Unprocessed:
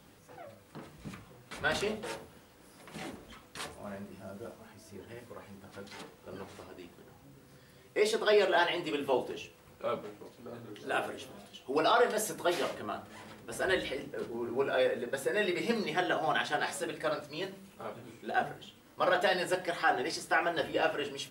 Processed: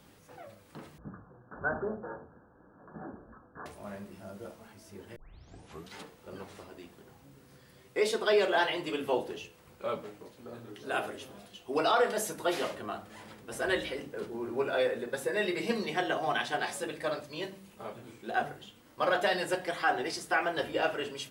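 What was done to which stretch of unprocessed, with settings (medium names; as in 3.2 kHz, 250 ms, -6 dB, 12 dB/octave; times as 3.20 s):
0.98–3.66 s: Chebyshev low-pass 1.7 kHz, order 10
5.16 s: tape start 0.78 s
15.24–17.96 s: band-stop 1.4 kHz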